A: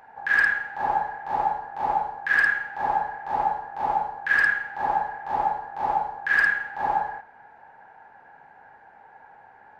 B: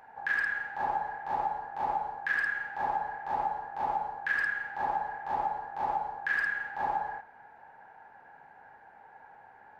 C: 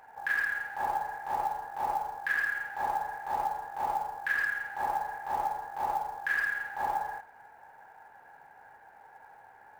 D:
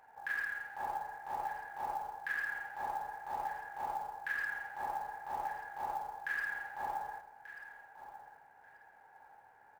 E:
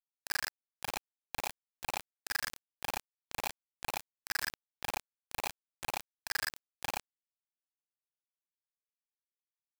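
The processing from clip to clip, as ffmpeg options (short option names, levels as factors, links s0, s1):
-af "acompressor=threshold=0.0708:ratio=6,volume=0.668"
-af "acrusher=bits=6:mode=log:mix=0:aa=0.000001,equalizer=f=210:w=1.3:g=-5"
-af "aecho=1:1:1187|2374:0.211|0.0444,volume=0.422"
-filter_complex "[0:a]asplit=2[s0][s1];[s1]adelay=39,volume=0.668[s2];[s0][s2]amix=inputs=2:normalize=0,acrusher=bits=4:mix=0:aa=0.000001"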